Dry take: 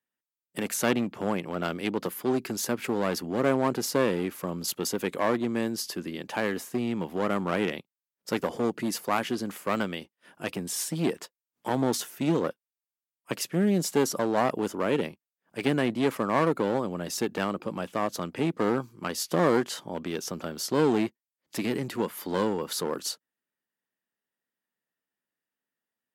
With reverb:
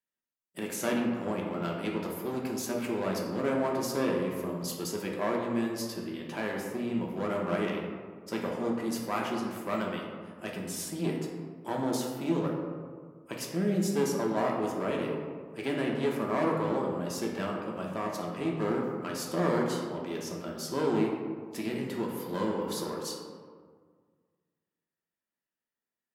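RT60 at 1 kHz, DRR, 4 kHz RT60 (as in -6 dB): 1.7 s, -2.0 dB, 0.80 s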